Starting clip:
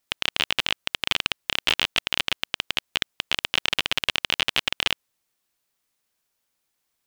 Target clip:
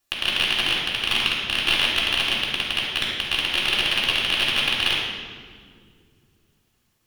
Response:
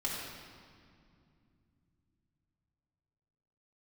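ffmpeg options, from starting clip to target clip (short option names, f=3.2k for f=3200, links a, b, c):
-filter_complex "[0:a]acontrast=67[a];[1:a]atrim=start_sample=2205,asetrate=57330,aresample=44100[b];[a][b]afir=irnorm=-1:irlink=0,volume=-2dB"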